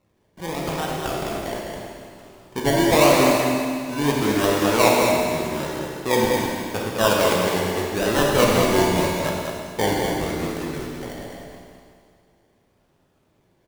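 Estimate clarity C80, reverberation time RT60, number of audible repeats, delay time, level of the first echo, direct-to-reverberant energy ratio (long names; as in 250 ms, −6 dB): −0.5 dB, 2.1 s, 1, 207 ms, −5.5 dB, −4.0 dB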